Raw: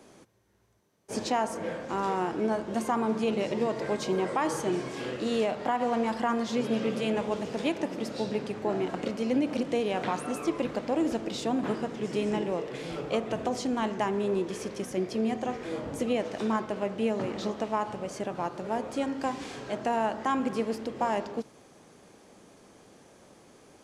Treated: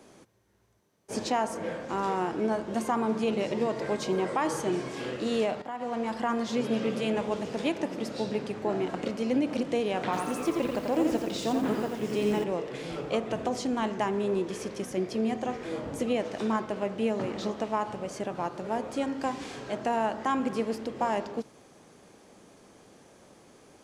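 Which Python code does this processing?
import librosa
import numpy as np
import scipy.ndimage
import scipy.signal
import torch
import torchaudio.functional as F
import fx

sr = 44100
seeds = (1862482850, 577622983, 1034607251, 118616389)

y = fx.echo_crushed(x, sr, ms=87, feedback_pct=35, bits=8, wet_db=-4.0, at=(10.04, 12.44))
y = fx.edit(y, sr, fx.fade_in_from(start_s=5.62, length_s=1.02, curve='qsin', floor_db=-12.5), tone=tone)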